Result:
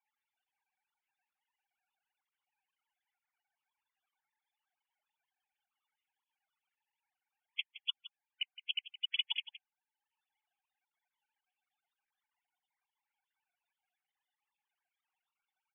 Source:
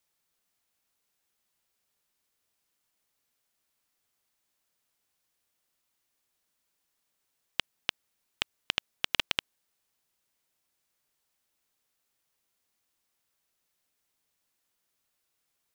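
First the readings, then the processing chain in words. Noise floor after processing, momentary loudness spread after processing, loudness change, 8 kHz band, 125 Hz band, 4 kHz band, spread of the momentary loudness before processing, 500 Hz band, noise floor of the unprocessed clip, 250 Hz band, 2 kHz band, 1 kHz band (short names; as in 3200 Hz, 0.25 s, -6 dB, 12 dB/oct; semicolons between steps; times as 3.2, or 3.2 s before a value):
under -85 dBFS, 18 LU, -5.0 dB, under -25 dB, under -40 dB, -3.0 dB, 7 LU, under -40 dB, -80 dBFS, under -40 dB, -8.0 dB, -21.5 dB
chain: sine-wave speech; frequency shift +14 Hz; loudest bins only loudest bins 32; transient shaper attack 0 dB, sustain -5 dB; echo 0.167 s -15 dB; gain -4 dB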